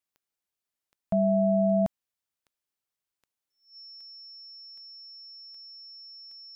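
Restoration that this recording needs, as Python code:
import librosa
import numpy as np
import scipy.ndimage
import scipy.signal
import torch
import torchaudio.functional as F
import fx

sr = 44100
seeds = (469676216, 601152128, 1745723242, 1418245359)

y = fx.fix_declick_ar(x, sr, threshold=10.0)
y = fx.notch(y, sr, hz=5400.0, q=30.0)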